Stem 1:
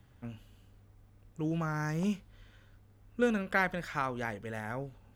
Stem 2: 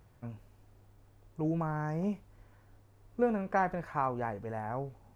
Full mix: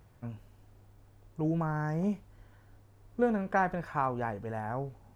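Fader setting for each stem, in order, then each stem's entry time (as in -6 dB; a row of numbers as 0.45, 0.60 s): -16.0, +1.5 dB; 0.00, 0.00 s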